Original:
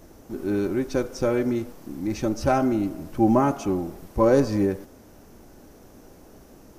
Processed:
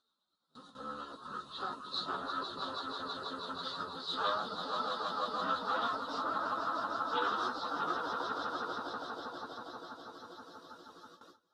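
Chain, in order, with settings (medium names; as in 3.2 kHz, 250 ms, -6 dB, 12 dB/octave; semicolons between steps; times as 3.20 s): pitch bend over the whole clip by -6.5 st ending unshifted; on a send: echo with a slow build-up 95 ms, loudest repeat 5, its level -4.5 dB; on the sum: reverb removal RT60 1.6 s; Chebyshev shaper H 5 -31 dB, 8 -15 dB, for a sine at -7 dBFS; plain phase-vocoder stretch 1.7×; in parallel at 0 dB: compression, threshold -35 dBFS, peak gain reduction 18 dB; on the sum: two resonant band-passes 2.2 kHz, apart 1.5 oct; gate with hold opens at -48 dBFS; trim +3.5 dB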